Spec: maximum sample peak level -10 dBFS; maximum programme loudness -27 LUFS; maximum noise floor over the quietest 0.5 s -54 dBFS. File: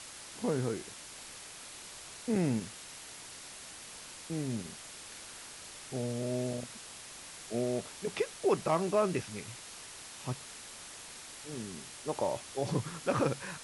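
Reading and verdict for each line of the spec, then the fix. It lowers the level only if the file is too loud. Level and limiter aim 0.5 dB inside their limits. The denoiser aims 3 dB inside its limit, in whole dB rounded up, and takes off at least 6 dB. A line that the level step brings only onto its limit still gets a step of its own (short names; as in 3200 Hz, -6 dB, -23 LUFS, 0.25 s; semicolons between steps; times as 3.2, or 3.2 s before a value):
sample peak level -16.0 dBFS: OK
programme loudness -36.5 LUFS: OK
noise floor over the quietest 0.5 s -48 dBFS: fail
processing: denoiser 9 dB, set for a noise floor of -48 dBFS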